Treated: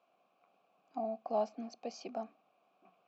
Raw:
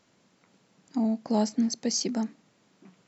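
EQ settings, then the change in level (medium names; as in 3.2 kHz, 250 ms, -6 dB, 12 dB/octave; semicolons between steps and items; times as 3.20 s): vowel filter a; high-pass 110 Hz; distance through air 69 m; +5.5 dB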